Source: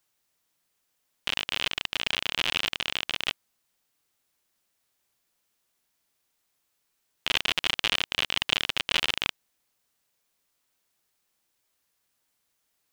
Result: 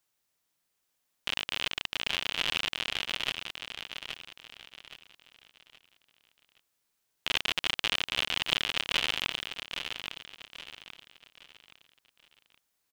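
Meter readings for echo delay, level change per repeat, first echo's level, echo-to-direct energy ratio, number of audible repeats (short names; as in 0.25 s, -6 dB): 0.821 s, -9.0 dB, -7.5 dB, -7.0 dB, 4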